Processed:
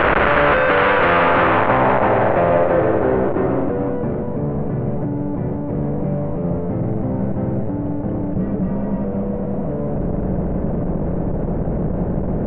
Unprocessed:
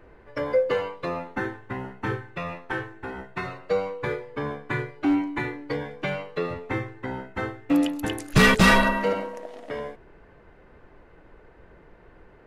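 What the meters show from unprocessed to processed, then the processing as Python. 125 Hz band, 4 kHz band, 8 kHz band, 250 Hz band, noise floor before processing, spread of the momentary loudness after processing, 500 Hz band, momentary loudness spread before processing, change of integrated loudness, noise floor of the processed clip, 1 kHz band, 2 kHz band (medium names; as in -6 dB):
+11.0 dB, no reading, under -30 dB, +7.0 dB, -53 dBFS, 9 LU, +10.0 dB, 16 LU, +7.0 dB, -23 dBFS, +10.5 dB, +5.5 dB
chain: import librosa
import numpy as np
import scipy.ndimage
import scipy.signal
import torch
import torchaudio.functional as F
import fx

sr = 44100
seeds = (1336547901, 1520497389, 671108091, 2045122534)

p1 = np.sign(x) * np.sqrt(np.mean(np.square(x)))
p2 = scipy.signal.sosfilt(scipy.signal.butter(4, 2900.0, 'lowpass', fs=sr, output='sos'), p1)
p3 = fx.peak_eq(p2, sr, hz=580.0, db=12.5, octaves=0.41)
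p4 = p3 + fx.echo_single(p3, sr, ms=312, db=-6.0, dry=0)
p5 = fx.filter_sweep_lowpass(p4, sr, from_hz=1400.0, to_hz=180.0, start_s=1.16, end_s=4.44, q=3.7)
p6 = fx.spectral_comp(p5, sr, ratio=2.0)
y = F.gain(torch.from_numpy(p6), 2.0).numpy()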